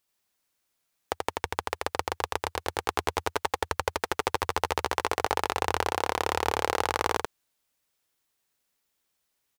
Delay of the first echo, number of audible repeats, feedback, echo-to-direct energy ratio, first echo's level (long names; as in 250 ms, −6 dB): 84 ms, 1, repeats not evenly spaced, −3.0 dB, −3.0 dB